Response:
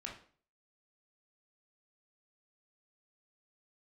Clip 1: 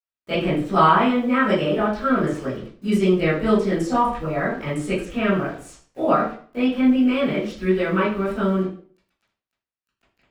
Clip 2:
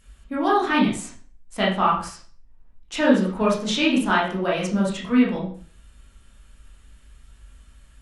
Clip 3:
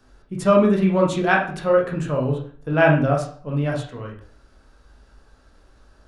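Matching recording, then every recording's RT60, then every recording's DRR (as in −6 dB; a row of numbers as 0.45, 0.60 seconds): 3; 0.45, 0.45, 0.45 seconds; −16.5, −6.5, −1.5 decibels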